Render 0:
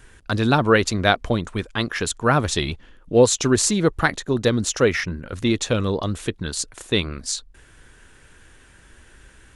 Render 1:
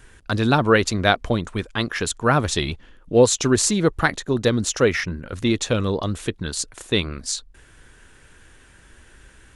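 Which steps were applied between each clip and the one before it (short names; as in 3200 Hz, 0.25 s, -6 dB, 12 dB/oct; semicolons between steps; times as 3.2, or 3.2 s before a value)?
nothing audible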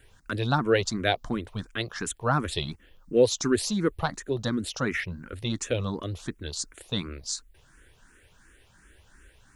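requantised 12-bit, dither triangular; endless phaser +2.8 Hz; gain -4.5 dB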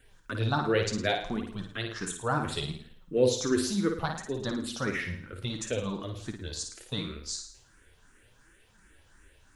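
flutter echo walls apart 9.4 m, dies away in 0.56 s; flange 0.69 Hz, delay 3.8 ms, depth 8.1 ms, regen +48%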